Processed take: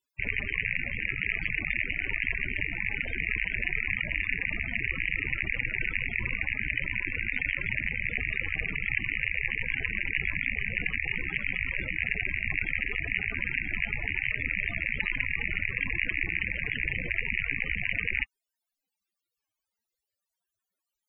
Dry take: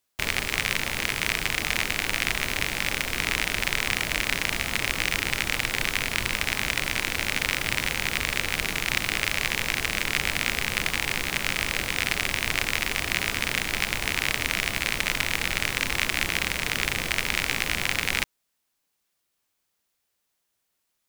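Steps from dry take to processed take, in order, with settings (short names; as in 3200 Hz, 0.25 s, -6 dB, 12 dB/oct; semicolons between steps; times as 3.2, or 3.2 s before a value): loudest bins only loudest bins 32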